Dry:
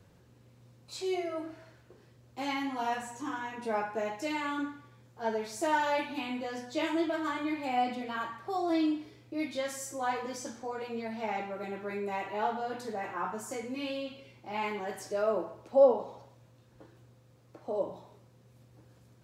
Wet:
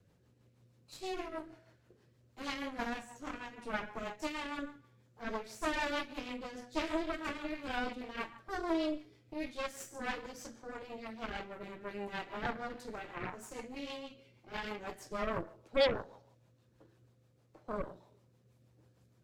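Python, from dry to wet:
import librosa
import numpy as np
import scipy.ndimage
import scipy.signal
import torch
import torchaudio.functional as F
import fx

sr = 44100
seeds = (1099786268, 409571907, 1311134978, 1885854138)

y = fx.cheby_harmonics(x, sr, harmonics=(8,), levels_db=(-10,), full_scale_db=-12.5)
y = fx.rotary(y, sr, hz=6.3)
y = y * librosa.db_to_amplitude(-6.5)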